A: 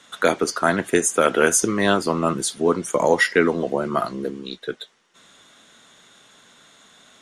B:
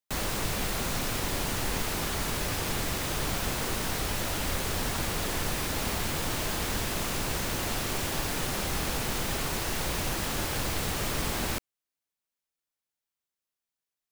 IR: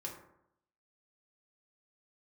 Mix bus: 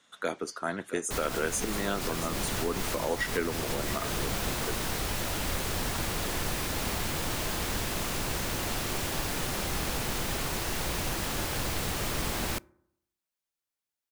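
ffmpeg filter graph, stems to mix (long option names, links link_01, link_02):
-filter_complex "[0:a]volume=-13.5dB,asplit=3[link_01][link_02][link_03];[link_02]volume=-12.5dB[link_04];[1:a]adelay=1000,volume=-1.5dB,asplit=2[link_05][link_06];[link_06]volume=-20dB[link_07];[link_03]apad=whole_len=666600[link_08];[link_05][link_08]sidechaincompress=threshold=-34dB:ratio=8:attack=22:release=161[link_09];[2:a]atrim=start_sample=2205[link_10];[link_07][link_10]afir=irnorm=-1:irlink=0[link_11];[link_04]aecho=0:1:675:1[link_12];[link_01][link_09][link_11][link_12]amix=inputs=4:normalize=0"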